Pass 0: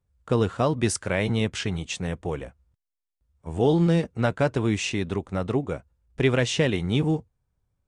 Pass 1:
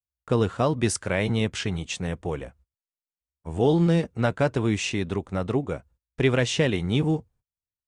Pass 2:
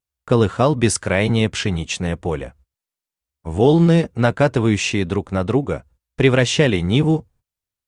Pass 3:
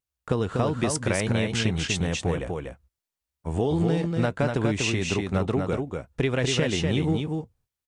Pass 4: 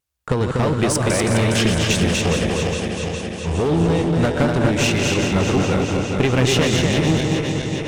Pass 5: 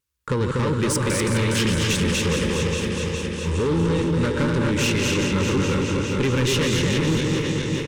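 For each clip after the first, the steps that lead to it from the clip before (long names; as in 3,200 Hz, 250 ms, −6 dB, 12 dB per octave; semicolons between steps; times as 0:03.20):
noise gate −54 dBFS, range −28 dB
pitch vibrato 1 Hz 18 cents; level +7 dB
downward compressor, threshold −19 dBFS, peak gain reduction 10.5 dB; on a send: single-tap delay 243 ms −4 dB; on the sum: level −2.5 dB
feedback delay that plays each chunk backwards 206 ms, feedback 81%, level −7 dB; asymmetric clip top −24 dBFS; on a send at −17.5 dB: convolution reverb RT60 4.1 s, pre-delay 42 ms; on the sum: level +7.5 dB
soft clipping −16 dBFS, distortion −14 dB; Butterworth band-reject 700 Hz, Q 2.3; repeating echo 631 ms, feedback 46%, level −14 dB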